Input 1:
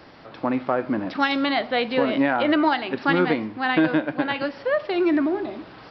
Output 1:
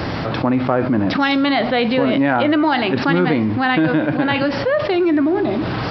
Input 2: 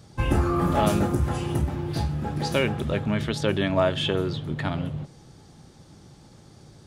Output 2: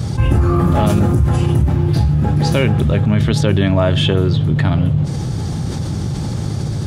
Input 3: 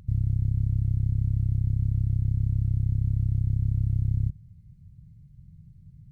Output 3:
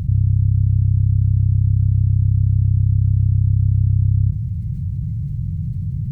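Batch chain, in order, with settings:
bell 100 Hz +11 dB 2 oct; fast leveller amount 70%; gain -1 dB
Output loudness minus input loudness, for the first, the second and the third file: +5.5, +9.5, +8.5 LU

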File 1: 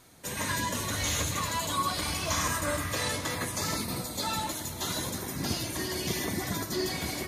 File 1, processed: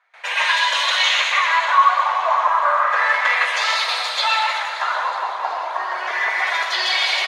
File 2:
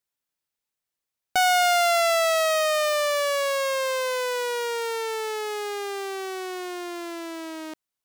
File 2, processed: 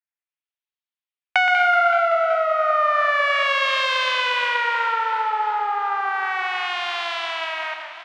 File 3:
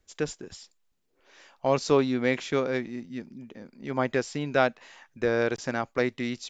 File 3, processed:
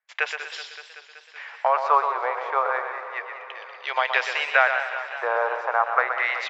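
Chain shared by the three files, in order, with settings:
gate with hold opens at -45 dBFS; inverse Chebyshev high-pass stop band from 270 Hz, stop band 50 dB; compressor 2.5:1, threshold -32 dBFS; LFO low-pass sine 0.32 Hz 970–3400 Hz; feedback echo 0.122 s, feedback 39%, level -8 dB; warbling echo 0.189 s, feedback 75%, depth 111 cents, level -13 dB; normalise peaks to -3 dBFS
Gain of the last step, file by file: +15.0, +10.0, +11.0 dB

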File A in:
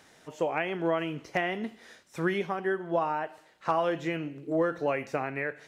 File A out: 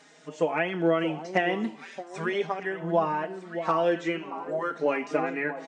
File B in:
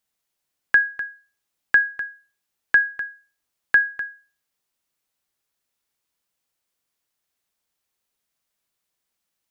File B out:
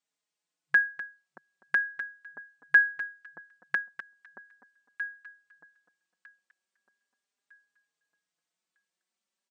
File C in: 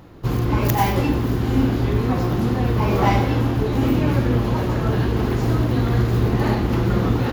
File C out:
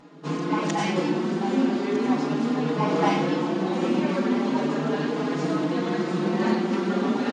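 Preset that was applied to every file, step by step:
echo with dull and thin repeats by turns 0.627 s, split 1000 Hz, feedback 50%, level -9 dB; FFT band-pass 150–9100 Hz; endless flanger 4.4 ms +0.39 Hz; normalise peaks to -9 dBFS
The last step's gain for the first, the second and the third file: +5.5, -2.5, +1.0 dB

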